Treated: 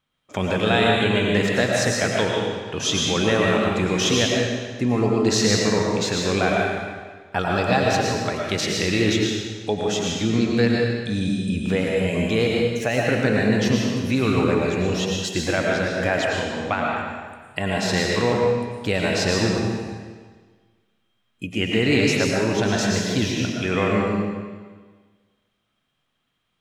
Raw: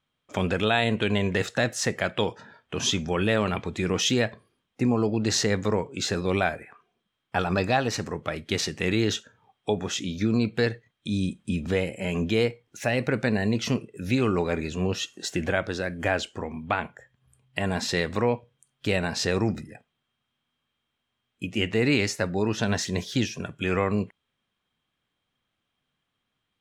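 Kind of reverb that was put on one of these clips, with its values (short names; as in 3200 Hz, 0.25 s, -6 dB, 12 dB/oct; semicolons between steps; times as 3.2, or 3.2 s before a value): digital reverb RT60 1.5 s, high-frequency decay 0.95×, pre-delay 70 ms, DRR -2 dB; gain +1.5 dB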